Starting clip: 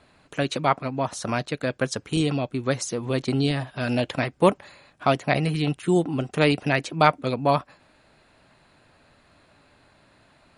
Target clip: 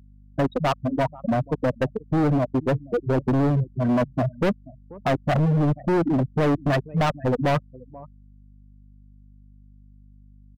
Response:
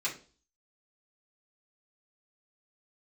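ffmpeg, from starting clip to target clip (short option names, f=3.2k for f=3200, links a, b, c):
-filter_complex "[0:a]afftfilt=real='re*gte(hypot(re,im),0.282)':imag='im*gte(hypot(re,im),0.282)':win_size=1024:overlap=0.75,equalizer=f=4.2k:w=0.5:g=-11.5,asplit=2[a][b];[b]acontrast=79,volume=3dB[c];[a][c]amix=inputs=2:normalize=0,alimiter=limit=-4.5dB:level=0:latency=1:release=33,asplit=2[d][e];[e]adelay=484,volume=-26dB,highshelf=f=4k:g=-10.9[f];[d][f]amix=inputs=2:normalize=0,volume=16.5dB,asoftclip=hard,volume=-16.5dB,aeval=exprs='val(0)+0.00447*(sin(2*PI*50*n/s)+sin(2*PI*2*50*n/s)/2+sin(2*PI*3*50*n/s)/3+sin(2*PI*4*50*n/s)/4+sin(2*PI*5*50*n/s)/5)':c=same,volume=-1.5dB"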